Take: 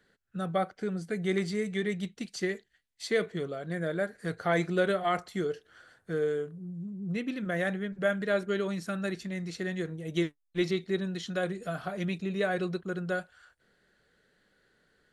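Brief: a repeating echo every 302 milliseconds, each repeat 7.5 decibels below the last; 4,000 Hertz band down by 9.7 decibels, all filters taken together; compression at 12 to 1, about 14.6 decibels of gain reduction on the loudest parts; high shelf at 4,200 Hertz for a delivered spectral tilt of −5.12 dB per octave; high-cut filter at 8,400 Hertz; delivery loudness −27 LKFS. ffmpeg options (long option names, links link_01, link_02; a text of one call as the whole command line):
ffmpeg -i in.wav -af "lowpass=8400,equalizer=frequency=4000:width_type=o:gain=-7.5,highshelf=frequency=4200:gain=-8.5,acompressor=threshold=-38dB:ratio=12,aecho=1:1:302|604|906|1208|1510:0.422|0.177|0.0744|0.0312|0.0131,volume=15.5dB" out.wav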